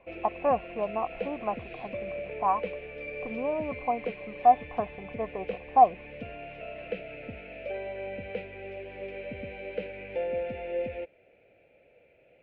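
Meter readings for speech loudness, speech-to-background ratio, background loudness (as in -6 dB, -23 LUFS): -28.5 LUFS, 9.5 dB, -38.0 LUFS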